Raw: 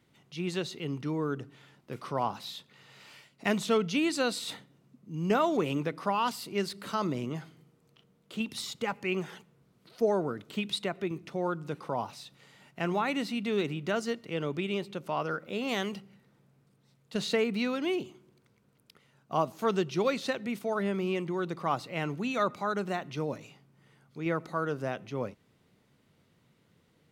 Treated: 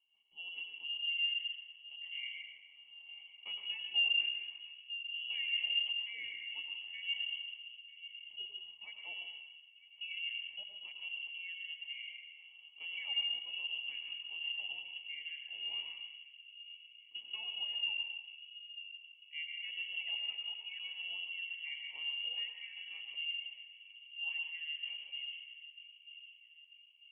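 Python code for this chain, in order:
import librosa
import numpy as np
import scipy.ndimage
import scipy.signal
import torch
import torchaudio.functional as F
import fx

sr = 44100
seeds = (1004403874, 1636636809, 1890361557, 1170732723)

p1 = fx.vowel_filter(x, sr, vowel='u')
p2 = fx.tilt_eq(p1, sr, slope=-4.0)
p3 = p2 + fx.echo_wet_lowpass(p2, sr, ms=943, feedback_pct=49, hz=660.0, wet_db=-12, dry=0)
p4 = fx.rev_plate(p3, sr, seeds[0], rt60_s=1.2, hf_ratio=0.5, predelay_ms=85, drr_db=2.5)
p5 = fx.freq_invert(p4, sr, carrier_hz=3100)
y = F.gain(torch.from_numpy(p5), -7.5).numpy()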